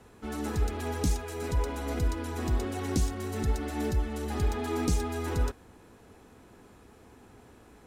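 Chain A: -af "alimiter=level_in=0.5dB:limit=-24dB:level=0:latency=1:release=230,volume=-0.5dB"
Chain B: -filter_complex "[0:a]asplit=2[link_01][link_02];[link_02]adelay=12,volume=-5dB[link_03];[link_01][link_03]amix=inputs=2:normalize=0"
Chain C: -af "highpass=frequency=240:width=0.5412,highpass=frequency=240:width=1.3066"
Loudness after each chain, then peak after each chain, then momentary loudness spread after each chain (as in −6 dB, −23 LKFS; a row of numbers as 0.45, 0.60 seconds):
−35.0, −30.5, −35.5 LKFS; −24.5, −13.5, −17.5 dBFS; 21, 5, 5 LU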